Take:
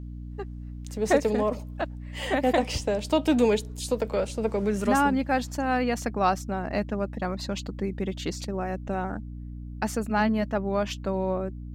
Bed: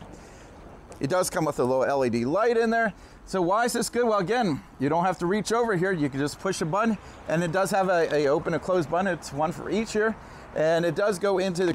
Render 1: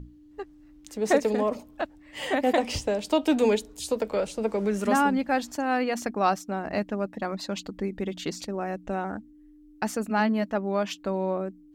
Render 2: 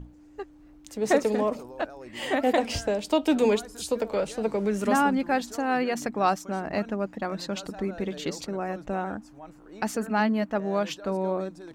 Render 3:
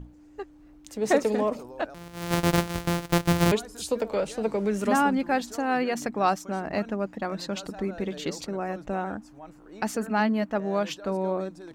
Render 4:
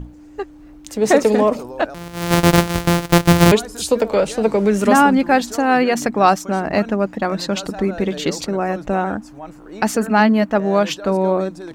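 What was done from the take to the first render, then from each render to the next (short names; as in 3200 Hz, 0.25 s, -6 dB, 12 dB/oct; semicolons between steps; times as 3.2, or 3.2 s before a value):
notches 60/120/180/240 Hz
add bed -20 dB
1.94–3.52 sample sorter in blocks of 256 samples
gain +10.5 dB; limiter -2 dBFS, peak gain reduction 3 dB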